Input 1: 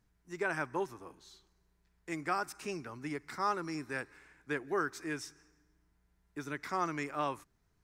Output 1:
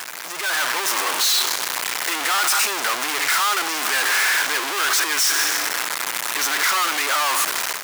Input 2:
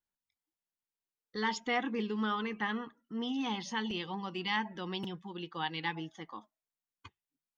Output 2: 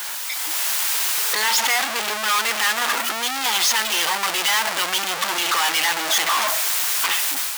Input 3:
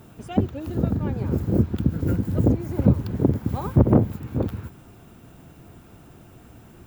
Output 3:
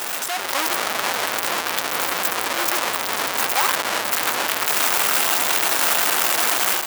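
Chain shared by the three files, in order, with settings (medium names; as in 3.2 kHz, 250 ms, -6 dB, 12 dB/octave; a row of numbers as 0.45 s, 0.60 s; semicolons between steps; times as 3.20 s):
one-bit comparator; level rider gain up to 8 dB; high-pass 900 Hz 12 dB/octave; normalise loudness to -19 LUFS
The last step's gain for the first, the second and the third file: +13.5 dB, +13.0 dB, +2.0 dB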